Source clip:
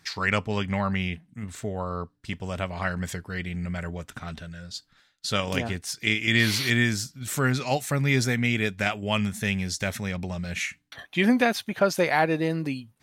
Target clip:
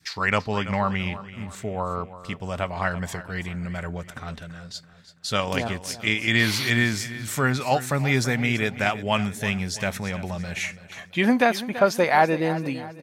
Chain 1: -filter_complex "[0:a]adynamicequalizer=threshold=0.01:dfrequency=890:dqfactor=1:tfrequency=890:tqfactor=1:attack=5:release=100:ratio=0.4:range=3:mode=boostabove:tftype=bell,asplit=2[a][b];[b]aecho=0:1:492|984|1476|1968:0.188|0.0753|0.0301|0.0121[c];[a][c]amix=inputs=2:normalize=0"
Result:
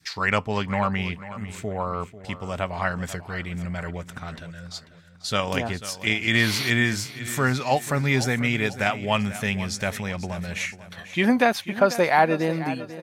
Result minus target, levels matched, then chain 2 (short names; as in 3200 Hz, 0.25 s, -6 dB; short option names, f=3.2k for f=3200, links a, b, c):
echo 0.159 s late
-filter_complex "[0:a]adynamicequalizer=threshold=0.01:dfrequency=890:dqfactor=1:tfrequency=890:tqfactor=1:attack=5:release=100:ratio=0.4:range=3:mode=boostabove:tftype=bell,asplit=2[a][b];[b]aecho=0:1:333|666|999|1332:0.188|0.0753|0.0301|0.0121[c];[a][c]amix=inputs=2:normalize=0"